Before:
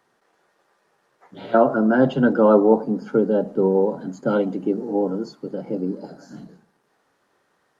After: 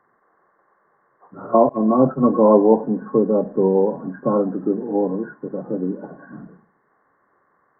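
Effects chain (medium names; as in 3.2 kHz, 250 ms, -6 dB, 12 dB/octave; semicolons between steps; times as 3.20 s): knee-point frequency compression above 1 kHz 4:1; 1.69–2.31 s: expander -16 dBFS; trim +1.5 dB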